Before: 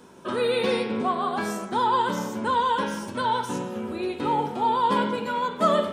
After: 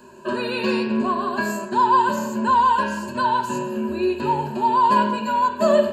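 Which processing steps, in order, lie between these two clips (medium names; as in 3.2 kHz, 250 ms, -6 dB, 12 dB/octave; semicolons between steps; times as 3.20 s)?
rippled EQ curve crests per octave 1.4, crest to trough 17 dB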